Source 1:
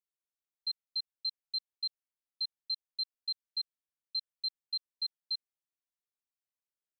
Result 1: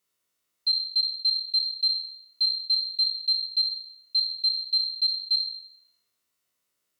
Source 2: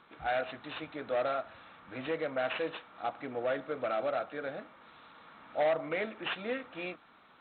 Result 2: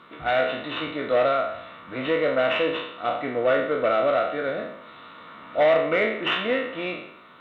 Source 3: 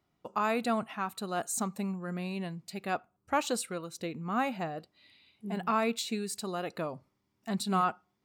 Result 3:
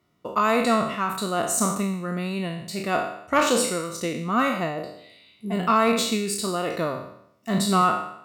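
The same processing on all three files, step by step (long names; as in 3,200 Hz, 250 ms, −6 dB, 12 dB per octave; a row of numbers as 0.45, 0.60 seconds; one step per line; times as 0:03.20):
peak hold with a decay on every bin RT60 0.72 s
notch comb filter 820 Hz
harmonic generator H 2 −13 dB, 4 −22 dB, 7 −40 dB, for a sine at −15.5 dBFS
loudness normalisation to −24 LKFS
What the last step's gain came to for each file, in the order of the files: +16.5, +10.0, +8.5 decibels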